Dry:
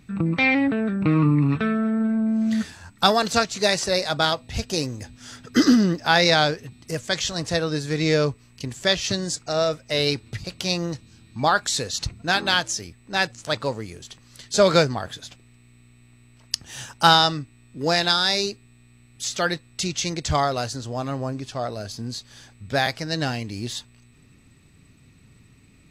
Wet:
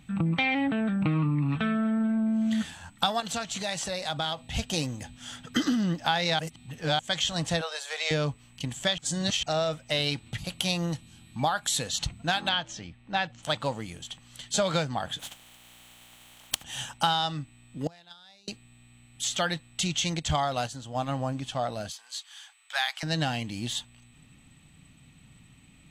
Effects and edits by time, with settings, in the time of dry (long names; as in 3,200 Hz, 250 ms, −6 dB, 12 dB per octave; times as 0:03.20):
0:03.20–0:04.41: downward compressor 4 to 1, threshold −27 dBFS
0:06.39–0:06.99: reverse
0:07.61–0:08.11: Butterworth high-pass 510 Hz 48 dB per octave
0:08.98–0:09.43: reverse
0:10.38–0:11.79: parametric band 11,000 Hz +15 dB 0.23 octaves
0:12.49–0:13.43: high-frequency loss of the air 160 metres
0:15.19–0:16.62: compressing power law on the bin magnitudes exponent 0.32
0:17.87–0:18.48: noise gate −15 dBFS, range −32 dB
0:20.19–0:21.14: noise gate −30 dBFS, range −6 dB
0:21.89–0:23.03: high-pass filter 970 Hz 24 dB per octave
whole clip: thirty-one-band graphic EQ 100 Hz −5 dB, 160 Hz +4 dB, 400 Hz −11 dB, 800 Hz +6 dB, 3,150 Hz +10 dB, 5,000 Hz −7 dB, 8,000 Hz +4 dB; downward compressor 6 to 1, threshold −21 dBFS; level −2 dB